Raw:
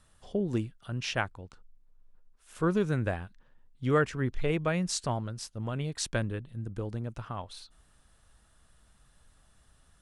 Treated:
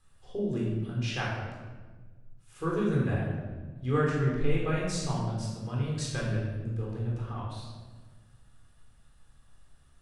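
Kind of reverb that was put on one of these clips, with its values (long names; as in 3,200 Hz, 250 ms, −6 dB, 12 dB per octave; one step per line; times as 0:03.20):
rectangular room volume 1,100 cubic metres, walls mixed, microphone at 3.9 metres
level −9 dB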